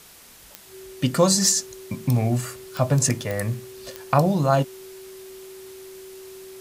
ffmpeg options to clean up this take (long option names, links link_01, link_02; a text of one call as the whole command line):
ffmpeg -i in.wav -af "adeclick=threshold=4,bandreject=frequency=380:width=30,afwtdn=0.0045" out.wav